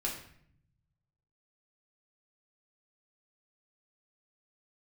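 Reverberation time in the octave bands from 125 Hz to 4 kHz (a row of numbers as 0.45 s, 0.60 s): 1.8 s, 1.1 s, 0.65 s, 0.60 s, 0.65 s, 0.50 s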